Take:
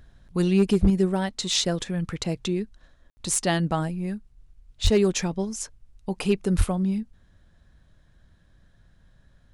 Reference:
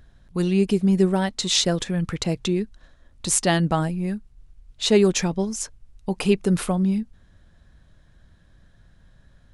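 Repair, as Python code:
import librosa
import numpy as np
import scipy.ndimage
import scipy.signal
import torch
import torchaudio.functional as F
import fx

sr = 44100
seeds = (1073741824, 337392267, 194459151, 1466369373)

y = fx.fix_declip(x, sr, threshold_db=-12.0)
y = fx.fix_deplosive(y, sr, at_s=(0.81, 4.83, 6.57))
y = fx.fix_ambience(y, sr, seeds[0], print_start_s=8.02, print_end_s=8.52, start_s=3.1, end_s=3.17)
y = fx.fix_level(y, sr, at_s=0.9, step_db=3.5)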